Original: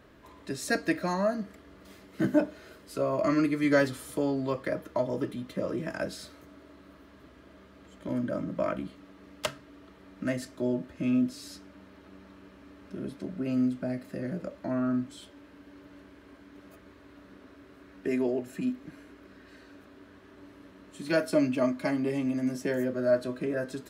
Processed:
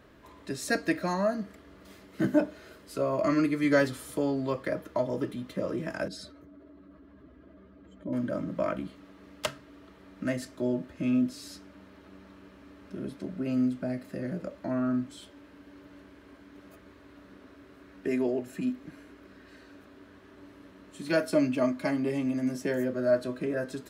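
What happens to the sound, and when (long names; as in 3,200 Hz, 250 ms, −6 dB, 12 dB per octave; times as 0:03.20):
0:06.08–0:08.13: expanding power law on the bin magnitudes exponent 1.6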